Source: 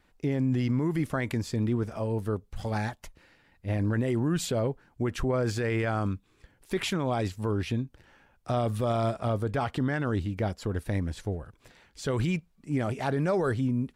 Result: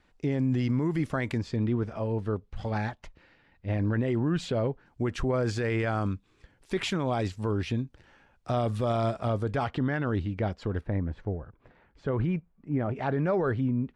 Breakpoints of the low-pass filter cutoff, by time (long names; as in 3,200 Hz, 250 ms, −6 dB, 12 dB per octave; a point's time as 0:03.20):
7,200 Hz
from 0:01.38 4,000 Hz
from 0:04.86 7,300 Hz
from 0:09.68 3,800 Hz
from 0:10.81 1,500 Hz
from 0:12.96 2,500 Hz